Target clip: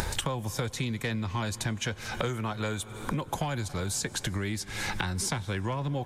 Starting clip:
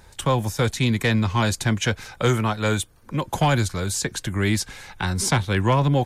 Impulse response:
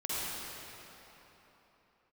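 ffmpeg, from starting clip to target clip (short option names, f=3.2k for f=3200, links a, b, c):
-filter_complex "[0:a]acompressor=mode=upward:threshold=-22dB:ratio=2.5,asplit=2[a][b];[1:a]atrim=start_sample=2205,adelay=95[c];[b][c]afir=irnorm=-1:irlink=0,volume=-26dB[d];[a][d]amix=inputs=2:normalize=0,acompressor=threshold=-33dB:ratio=12,volume=5dB"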